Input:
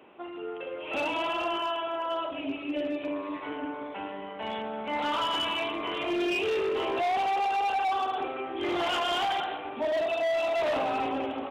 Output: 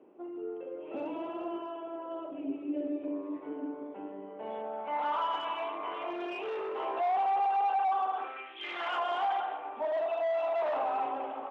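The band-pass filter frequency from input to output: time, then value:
band-pass filter, Q 1.5
4.25 s 340 Hz
4.94 s 890 Hz
8.12 s 890 Hz
8.58 s 3.3 kHz
9.01 s 900 Hz

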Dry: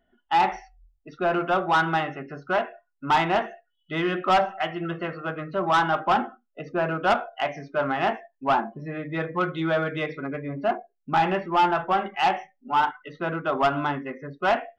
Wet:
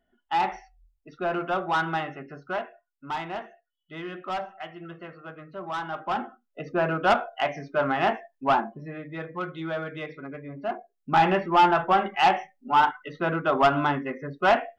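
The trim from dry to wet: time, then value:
2.28 s -4 dB
3.17 s -11 dB
5.83 s -11 dB
6.63 s +0.5 dB
8.48 s +0.5 dB
9.14 s -7 dB
10.61 s -7 dB
11.21 s +2 dB

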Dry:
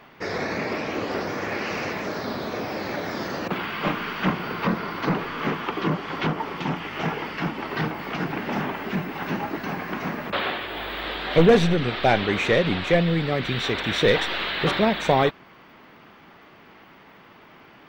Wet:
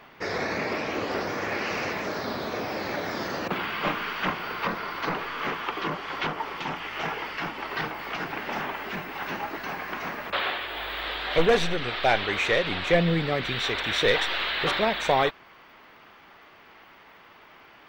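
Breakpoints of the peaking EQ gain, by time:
peaking EQ 180 Hz 2.3 oct
3.63 s -4 dB
4.39 s -12.5 dB
12.66 s -12.5 dB
13.07 s -1 dB
13.67 s -10.5 dB

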